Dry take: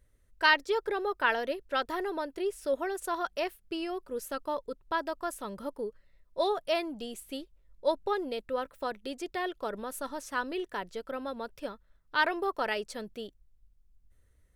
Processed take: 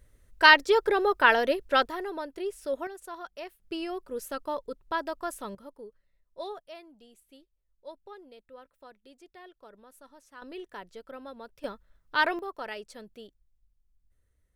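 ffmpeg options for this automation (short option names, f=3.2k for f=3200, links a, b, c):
-af "asetnsamples=n=441:p=0,asendcmd='1.88 volume volume -1.5dB;2.87 volume volume -8.5dB;3.6 volume volume 0.5dB;5.55 volume volume -9.5dB;6.6 volume volume -16.5dB;10.42 volume volume -6.5dB;11.64 volume volume 2dB;12.39 volume volume -6.5dB',volume=7dB"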